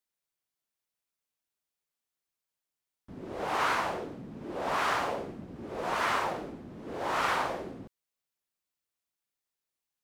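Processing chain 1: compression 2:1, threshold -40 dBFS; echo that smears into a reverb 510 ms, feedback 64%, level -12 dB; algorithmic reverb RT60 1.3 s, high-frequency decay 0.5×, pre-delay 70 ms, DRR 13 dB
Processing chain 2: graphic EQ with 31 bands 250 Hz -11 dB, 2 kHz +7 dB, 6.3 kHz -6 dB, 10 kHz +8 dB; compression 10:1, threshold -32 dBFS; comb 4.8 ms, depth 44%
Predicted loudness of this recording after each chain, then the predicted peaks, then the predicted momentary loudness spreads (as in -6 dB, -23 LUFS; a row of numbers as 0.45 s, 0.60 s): -39.0 LUFS, -37.0 LUFS; -24.0 dBFS, -21.5 dBFS; 18 LU, 11 LU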